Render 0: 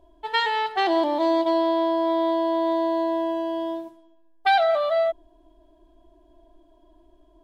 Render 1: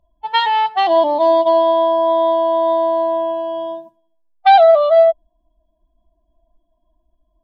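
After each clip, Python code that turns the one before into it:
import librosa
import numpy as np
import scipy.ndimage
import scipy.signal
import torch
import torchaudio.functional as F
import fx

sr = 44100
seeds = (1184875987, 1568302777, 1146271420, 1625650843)

y = fx.bin_expand(x, sr, power=1.5)
y = fx.curve_eq(y, sr, hz=(100.0, 190.0, 410.0, 630.0, 1100.0, 1600.0, 3300.0, 8000.0), db=(0, 14, -5, 14, 10, 3, 9, -3))
y = y * librosa.db_to_amplitude(-1.0)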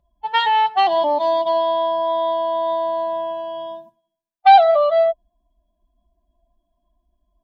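y = fx.notch_comb(x, sr, f0_hz=320.0)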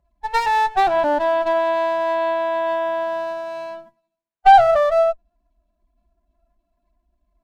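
y = fx.env_lowpass_down(x, sr, base_hz=2600.0, full_db=-14.5)
y = fx.running_max(y, sr, window=9)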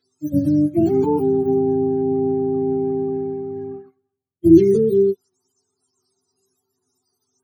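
y = fx.octave_mirror(x, sr, pivot_hz=510.0)
y = y * librosa.db_to_amplitude(1.5)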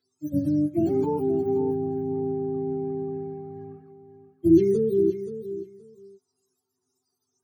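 y = fx.echo_feedback(x, sr, ms=526, feedback_pct=18, wet_db=-11.5)
y = y * librosa.db_to_amplitude(-6.5)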